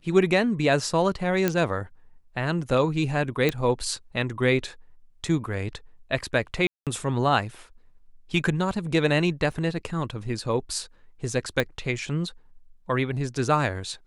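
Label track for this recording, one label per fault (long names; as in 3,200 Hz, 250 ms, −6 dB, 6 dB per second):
1.480000	1.480000	click −8 dBFS
3.490000	3.490000	click −10 dBFS
6.670000	6.870000	drop-out 197 ms
9.520000	9.520000	drop-out 3.1 ms
11.600000	11.600000	click −11 dBFS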